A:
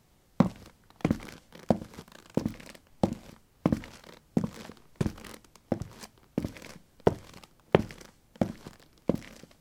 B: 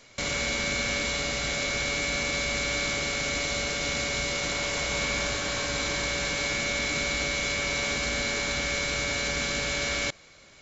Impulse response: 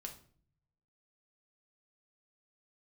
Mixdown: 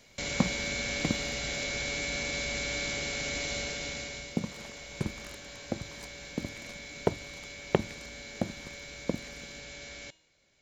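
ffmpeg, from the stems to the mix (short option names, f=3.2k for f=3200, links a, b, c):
-filter_complex "[0:a]volume=-4dB,asplit=3[a][b][c];[a]atrim=end=1.64,asetpts=PTS-STARTPTS,afade=t=out:st=1.636:d=0.004:c=hsin[d];[b]atrim=start=1.64:end=4.3,asetpts=PTS-STARTPTS,volume=0[e];[c]atrim=start=4.3,asetpts=PTS-STARTPTS,afade=t=in:d=0.004:c=hsin[f];[d][e][f]concat=n=3:v=0:a=1[g];[1:a]equalizer=f=1.2k:t=o:w=0.44:g=-8.5,bandreject=f=317.6:t=h:w=4,bandreject=f=635.2:t=h:w=4,bandreject=f=952.8:t=h:w=4,bandreject=f=1.2704k:t=h:w=4,bandreject=f=1.588k:t=h:w=4,bandreject=f=1.9056k:t=h:w=4,bandreject=f=2.2232k:t=h:w=4,bandreject=f=2.5408k:t=h:w=4,bandreject=f=2.8584k:t=h:w=4,bandreject=f=3.176k:t=h:w=4,bandreject=f=3.4936k:t=h:w=4,bandreject=f=3.8112k:t=h:w=4,bandreject=f=4.1288k:t=h:w=4,bandreject=f=4.4464k:t=h:w=4,bandreject=f=4.764k:t=h:w=4,bandreject=f=5.0816k:t=h:w=4,bandreject=f=5.3992k:t=h:w=4,bandreject=f=5.7168k:t=h:w=4,bandreject=f=6.0344k:t=h:w=4,bandreject=f=6.352k:t=h:w=4,bandreject=f=6.6696k:t=h:w=4,bandreject=f=6.9872k:t=h:w=4,bandreject=f=7.3048k:t=h:w=4,bandreject=f=7.6224k:t=h:w=4,bandreject=f=7.94k:t=h:w=4,bandreject=f=8.2576k:t=h:w=4,bandreject=f=8.5752k:t=h:w=4,bandreject=f=8.8928k:t=h:w=4,bandreject=f=9.2104k:t=h:w=4,bandreject=f=9.528k:t=h:w=4,volume=-4.5dB,afade=t=out:st=3.57:d=0.78:silence=0.281838[h];[g][h]amix=inputs=2:normalize=0"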